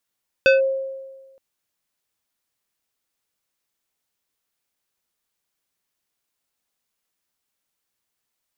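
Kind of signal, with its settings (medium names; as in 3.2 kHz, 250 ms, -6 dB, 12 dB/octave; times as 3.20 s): FM tone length 0.92 s, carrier 536 Hz, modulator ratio 3.83, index 1, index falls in 0.15 s linear, decay 1.34 s, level -9 dB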